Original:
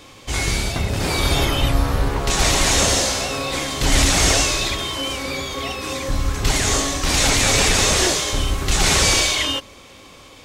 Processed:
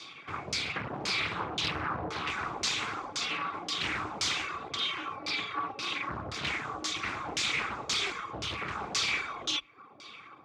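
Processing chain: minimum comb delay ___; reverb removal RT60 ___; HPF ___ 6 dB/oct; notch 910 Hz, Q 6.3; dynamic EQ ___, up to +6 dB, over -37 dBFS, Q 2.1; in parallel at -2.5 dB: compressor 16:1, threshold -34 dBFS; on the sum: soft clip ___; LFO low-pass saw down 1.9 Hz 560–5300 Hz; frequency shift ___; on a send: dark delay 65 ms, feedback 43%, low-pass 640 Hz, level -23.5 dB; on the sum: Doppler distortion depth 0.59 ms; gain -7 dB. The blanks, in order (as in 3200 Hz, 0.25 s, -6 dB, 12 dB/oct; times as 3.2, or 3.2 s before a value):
0.87 ms, 0.63 s, 390 Hz, 7100 Hz, -19.5 dBFS, +34 Hz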